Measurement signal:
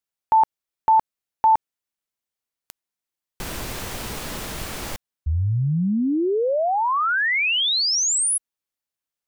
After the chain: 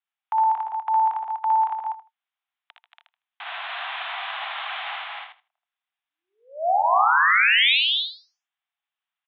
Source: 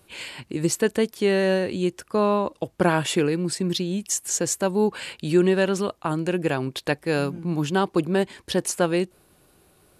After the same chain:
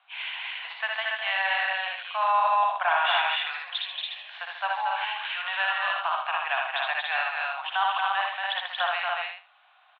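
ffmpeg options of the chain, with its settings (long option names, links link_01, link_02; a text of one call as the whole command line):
ffmpeg -i in.wav -filter_complex "[0:a]asuperpass=centerf=1600:order=20:qfactor=0.54,asplit=2[link_01][link_02];[link_02]aecho=0:1:78|156|234:0.501|0.0802|0.0128[link_03];[link_01][link_03]amix=inputs=2:normalize=0,alimiter=limit=-17dB:level=0:latency=1:release=14,bandreject=frequency=900:width=30,asplit=2[link_04][link_05];[link_05]aecho=0:1:61.22|230.3|282.8:0.631|0.631|0.708[link_06];[link_04][link_06]amix=inputs=2:normalize=0,volume=1.5dB" out.wav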